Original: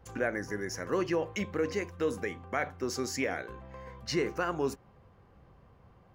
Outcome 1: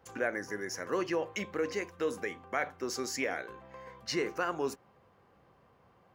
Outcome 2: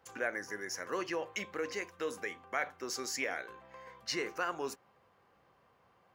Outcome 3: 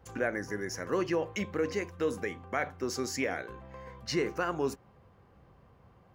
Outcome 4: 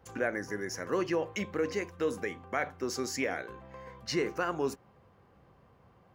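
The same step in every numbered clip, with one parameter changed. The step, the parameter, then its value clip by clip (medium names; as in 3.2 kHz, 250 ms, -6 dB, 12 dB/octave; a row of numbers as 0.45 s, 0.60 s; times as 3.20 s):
high-pass, cutoff frequency: 330 Hz, 890 Hz, 50 Hz, 130 Hz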